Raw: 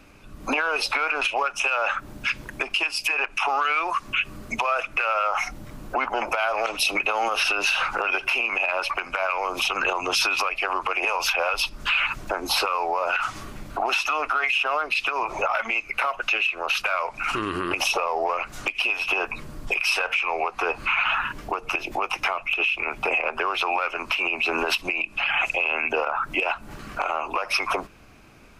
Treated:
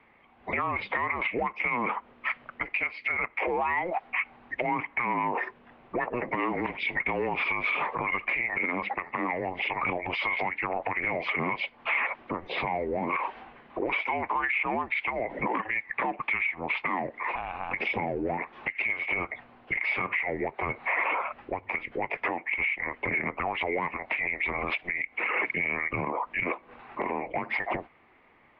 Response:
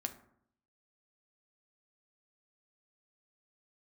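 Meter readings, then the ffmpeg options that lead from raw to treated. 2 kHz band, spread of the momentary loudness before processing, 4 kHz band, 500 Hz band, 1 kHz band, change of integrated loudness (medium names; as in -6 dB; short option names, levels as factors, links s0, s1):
-4.5 dB, 6 LU, -15.5 dB, -4.0 dB, -5.5 dB, -5.5 dB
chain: -af "highpass=f=530:t=q:w=0.5412,highpass=f=530:t=q:w=1.307,lowpass=f=3300:t=q:w=0.5176,lowpass=f=3300:t=q:w=0.7071,lowpass=f=3300:t=q:w=1.932,afreqshift=-360,volume=0.596"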